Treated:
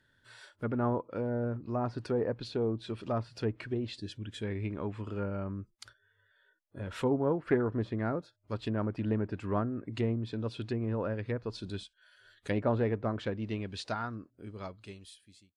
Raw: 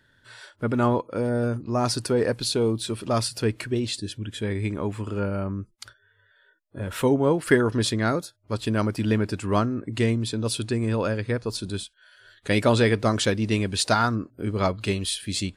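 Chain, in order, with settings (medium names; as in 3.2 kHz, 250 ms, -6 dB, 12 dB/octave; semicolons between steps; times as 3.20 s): fade out at the end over 3.12 s; low-pass that closes with the level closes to 1.2 kHz, closed at -20 dBFS; loudspeaker Doppler distortion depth 0.11 ms; trim -8 dB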